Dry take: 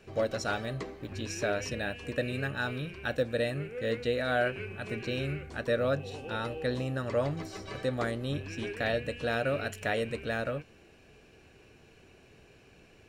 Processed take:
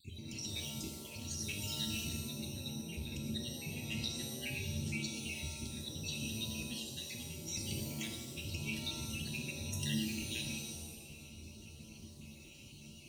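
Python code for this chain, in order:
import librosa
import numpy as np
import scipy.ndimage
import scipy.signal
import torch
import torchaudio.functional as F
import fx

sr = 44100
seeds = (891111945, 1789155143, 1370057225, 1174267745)

y = fx.spec_dropout(x, sr, seeds[0], share_pct=50)
y = fx.vibrato(y, sr, rate_hz=1.2, depth_cents=23.0)
y = scipy.signal.sosfilt(scipy.signal.ellip(3, 1.0, 40, [300.0, 2700.0], 'bandstop', fs=sr, output='sos'), y)
y = fx.peak_eq(y, sr, hz=5900.0, db=4.5, octaves=0.23)
y = fx.comb_fb(y, sr, f0_hz=82.0, decay_s=0.21, harmonics='all', damping=0.0, mix_pct=70)
y = fx.over_compress(y, sr, threshold_db=-52.0, ratio=-1.0)
y = fx.peak_eq(y, sr, hz=310.0, db=-7.5, octaves=1.2)
y = fx.notch_comb(y, sr, f0_hz=600.0)
y = fx.rev_shimmer(y, sr, seeds[1], rt60_s=1.1, semitones=7, shimmer_db=-2, drr_db=3.5)
y = y * 10.0 ** (9.5 / 20.0)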